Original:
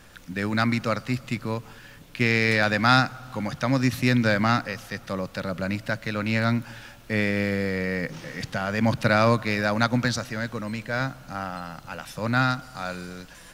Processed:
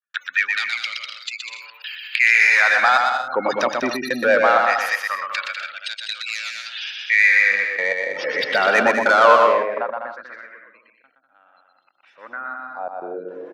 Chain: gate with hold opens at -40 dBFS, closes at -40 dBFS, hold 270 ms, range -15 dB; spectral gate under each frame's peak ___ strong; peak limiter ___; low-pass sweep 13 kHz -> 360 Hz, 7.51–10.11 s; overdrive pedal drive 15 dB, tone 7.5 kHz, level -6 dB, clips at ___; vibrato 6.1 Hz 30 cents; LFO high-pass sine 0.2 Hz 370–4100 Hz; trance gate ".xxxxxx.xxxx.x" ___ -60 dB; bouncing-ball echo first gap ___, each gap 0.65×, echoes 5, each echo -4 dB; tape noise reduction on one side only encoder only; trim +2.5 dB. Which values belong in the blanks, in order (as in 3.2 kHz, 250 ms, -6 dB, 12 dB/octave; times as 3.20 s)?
-20 dB, -16 dBFS, -10.5 dBFS, 106 bpm, 120 ms